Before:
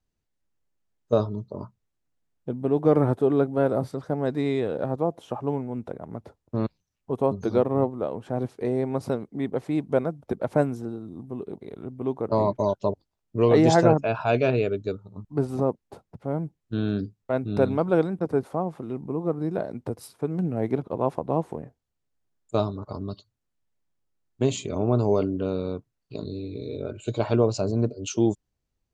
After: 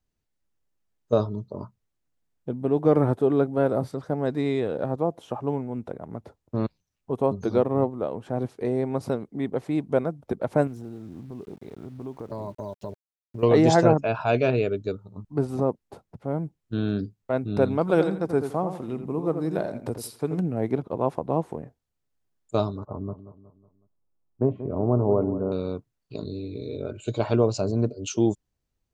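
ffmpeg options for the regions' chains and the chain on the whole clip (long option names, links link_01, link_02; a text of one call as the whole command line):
ffmpeg -i in.wav -filter_complex "[0:a]asettb=1/sr,asplit=3[link_01][link_02][link_03];[link_01]atrim=end=10.674[link_04];[link_02]atrim=start=10.67:end=13.43,asetpts=PTS-STARTPTS,afade=type=in:duration=0.004:curve=qsin,afade=type=out:start_time=2.756:duration=0.004:curve=qsin,lowshelf=frequency=150:gain=6.5,acompressor=threshold=-36dB:ratio=2.5:attack=3.2:release=140:knee=1:detection=peak,aeval=exprs='val(0)*gte(abs(val(0)),0.00211)':channel_layout=same[link_05];[link_03]atrim=start=13.426[link_06];[link_04][link_05]acrossfade=duration=0.004:curve1=hsin:curve2=qsin[link_07];[link_07][link_06]acrossfade=duration=0.004:curve1=qsin:curve2=hsin,asettb=1/sr,asplit=3[link_08][link_09][link_10];[link_08]atrim=end=17.814[link_11];[link_09]atrim=start=17.81:end=20.4,asetpts=PTS-STARTPTS,afade=type=in:duration=0.004:curve=qsin,afade=type=out:start_time=2.586:duration=0.004:curve=qsin,highshelf=frequency=2300:gain=8,asplit=2[link_12][link_13];[link_13]adelay=84,lowpass=frequency=2900:poles=1,volume=-8dB,asplit=2[link_14][link_15];[link_15]adelay=84,lowpass=frequency=2900:poles=1,volume=0.27,asplit=2[link_16][link_17];[link_17]adelay=84,lowpass=frequency=2900:poles=1,volume=0.27[link_18];[link_12][link_14][link_16][link_18]amix=inputs=4:normalize=0,atrim=end_sample=114219[link_19];[link_10]atrim=start=20.396[link_20];[link_11][link_19]acrossfade=duration=0.004:curve1=hsin:curve2=qsin[link_21];[link_21][link_20]acrossfade=duration=0.004:curve1=qsin:curve2=hsin,asettb=1/sr,asplit=3[link_22][link_23][link_24];[link_22]atrim=end=22.854[link_25];[link_23]atrim=start=22.85:end=25.52,asetpts=PTS-STARTPTS,afade=type=in:duration=0.004:curve=qsin,afade=type=out:start_time=2.666:duration=0.004:curve=qsin,lowpass=frequency=1200:width=0.5412,lowpass=frequency=1200:width=1.3066,aecho=1:1:184|368|552|736:0.224|0.101|0.0453|0.0204,atrim=end_sample=117747[link_26];[link_24]atrim=start=25.516[link_27];[link_25][link_26]acrossfade=duration=0.004:curve1=hsin:curve2=qsin[link_28];[link_28][link_27]acrossfade=duration=0.004:curve1=qsin:curve2=hsin" out.wav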